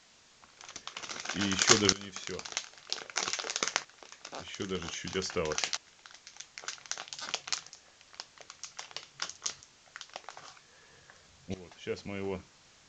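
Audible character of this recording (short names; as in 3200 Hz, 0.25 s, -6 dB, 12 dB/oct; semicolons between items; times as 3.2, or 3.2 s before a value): tremolo saw up 0.52 Hz, depth 90%; a quantiser's noise floor 10-bit, dither triangular; A-law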